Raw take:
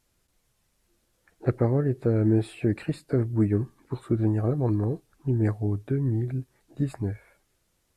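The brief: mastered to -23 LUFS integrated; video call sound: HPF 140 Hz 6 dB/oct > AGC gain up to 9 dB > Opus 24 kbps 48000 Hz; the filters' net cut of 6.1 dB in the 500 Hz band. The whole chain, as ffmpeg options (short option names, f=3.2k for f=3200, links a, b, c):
-af "highpass=f=140:p=1,equalizer=f=500:t=o:g=-8,dynaudnorm=m=9dB,volume=8dB" -ar 48000 -c:a libopus -b:a 24k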